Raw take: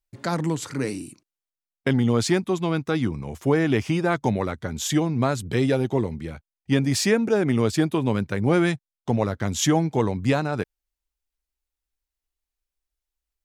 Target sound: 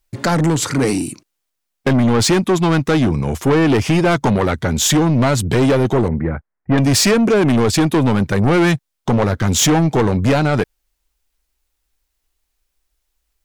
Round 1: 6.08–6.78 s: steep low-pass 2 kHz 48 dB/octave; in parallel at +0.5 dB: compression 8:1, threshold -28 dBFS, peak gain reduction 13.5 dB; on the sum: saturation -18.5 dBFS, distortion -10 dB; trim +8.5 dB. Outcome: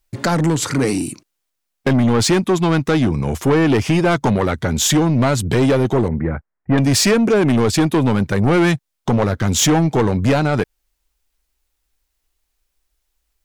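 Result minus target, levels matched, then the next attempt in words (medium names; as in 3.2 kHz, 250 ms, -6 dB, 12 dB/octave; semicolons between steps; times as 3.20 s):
compression: peak gain reduction +7 dB
6.08–6.78 s: steep low-pass 2 kHz 48 dB/octave; in parallel at +0.5 dB: compression 8:1, threshold -20 dBFS, peak gain reduction 6.5 dB; on the sum: saturation -18.5 dBFS, distortion -8 dB; trim +8.5 dB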